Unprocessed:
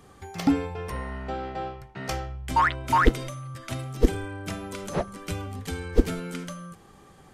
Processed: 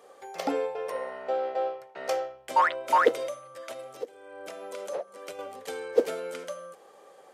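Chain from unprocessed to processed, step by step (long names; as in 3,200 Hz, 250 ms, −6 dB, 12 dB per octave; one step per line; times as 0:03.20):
0:03.35–0:05.39: downward compressor 16 to 1, threshold −34 dBFS, peak gain reduction 23.5 dB
high-pass with resonance 530 Hz, resonance Q 4.9
level −3.5 dB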